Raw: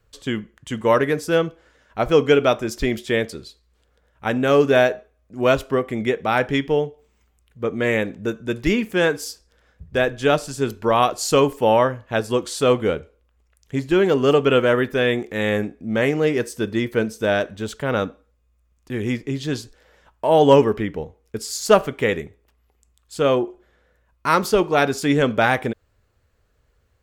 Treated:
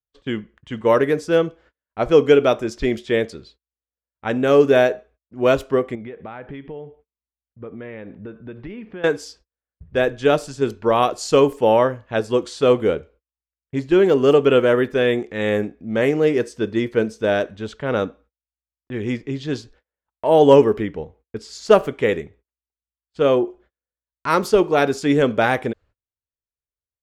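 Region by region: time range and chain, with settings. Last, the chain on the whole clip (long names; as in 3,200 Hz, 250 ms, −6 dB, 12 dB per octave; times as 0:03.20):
0:05.95–0:09.04: low-pass filter 4,700 Hz 24 dB per octave + downward compressor 5 to 1, threshold −29 dBFS + high-shelf EQ 3,100 Hz −11.5 dB
whole clip: low-pass that shuts in the quiet parts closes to 2,500 Hz, open at −14.5 dBFS; noise gate −48 dBFS, range −34 dB; dynamic equaliser 400 Hz, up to +5 dB, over −26 dBFS, Q 1; level −2 dB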